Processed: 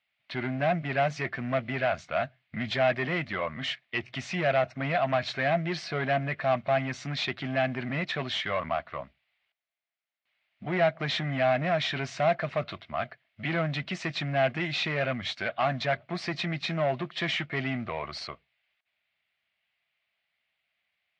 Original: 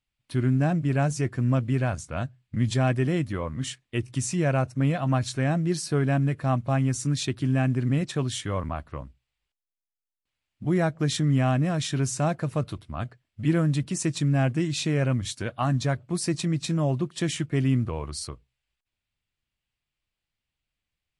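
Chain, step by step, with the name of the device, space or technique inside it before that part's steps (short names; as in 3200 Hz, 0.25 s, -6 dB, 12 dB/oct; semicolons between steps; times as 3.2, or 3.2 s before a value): overdrive pedal into a guitar cabinet (overdrive pedal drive 20 dB, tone 6300 Hz, clips at -12 dBFS; speaker cabinet 92–4100 Hz, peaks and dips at 120 Hz -6 dB, 300 Hz -10 dB, 460 Hz -7 dB, 660 Hz +8 dB, 960 Hz -4 dB, 2100 Hz +7 dB); gain -6 dB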